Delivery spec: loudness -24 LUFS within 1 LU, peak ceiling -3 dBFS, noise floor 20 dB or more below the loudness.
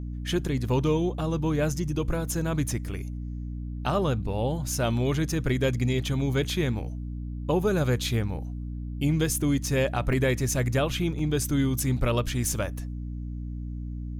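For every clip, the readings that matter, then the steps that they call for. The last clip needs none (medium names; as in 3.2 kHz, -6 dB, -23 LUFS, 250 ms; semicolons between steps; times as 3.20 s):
dropouts 2; longest dropout 2.6 ms; hum 60 Hz; highest harmonic 300 Hz; hum level -31 dBFS; loudness -27.5 LUFS; peak level -13.0 dBFS; loudness target -24.0 LUFS
-> interpolate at 10.13/11.19 s, 2.6 ms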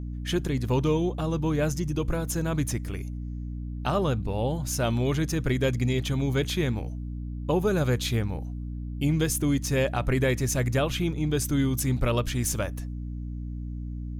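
dropouts 0; hum 60 Hz; highest harmonic 300 Hz; hum level -31 dBFS
-> de-hum 60 Hz, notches 5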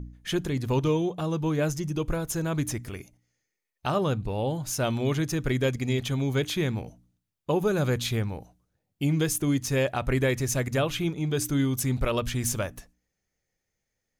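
hum not found; loudness -27.5 LUFS; peak level -14.0 dBFS; loudness target -24.0 LUFS
-> trim +3.5 dB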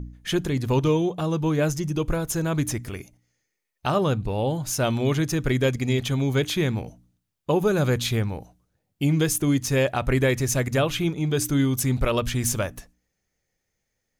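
loudness -24.0 LUFS; peak level -10.5 dBFS; noise floor -79 dBFS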